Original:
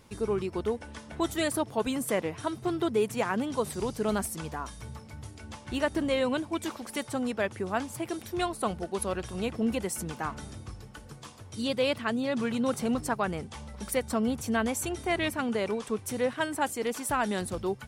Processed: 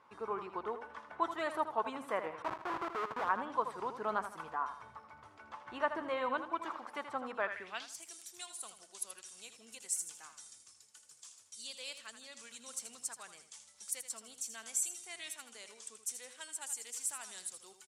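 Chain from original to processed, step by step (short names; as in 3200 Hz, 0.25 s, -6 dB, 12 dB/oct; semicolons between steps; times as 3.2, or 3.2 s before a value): 2.42–3.29 Schmitt trigger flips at -29.5 dBFS; feedback echo 80 ms, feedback 36%, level -10 dB; band-pass sweep 1100 Hz -> 7500 Hz, 7.41–8.04; gain +3 dB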